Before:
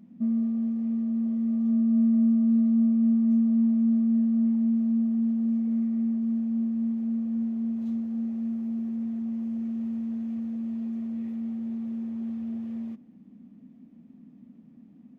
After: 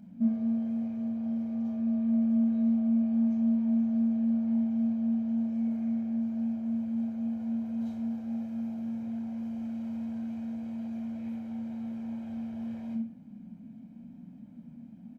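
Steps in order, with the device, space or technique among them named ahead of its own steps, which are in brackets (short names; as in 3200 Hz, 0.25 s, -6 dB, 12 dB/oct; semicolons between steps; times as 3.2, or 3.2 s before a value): microphone above a desk (comb 1.3 ms, depth 63%; reverb RT60 0.55 s, pre-delay 22 ms, DRR 1 dB)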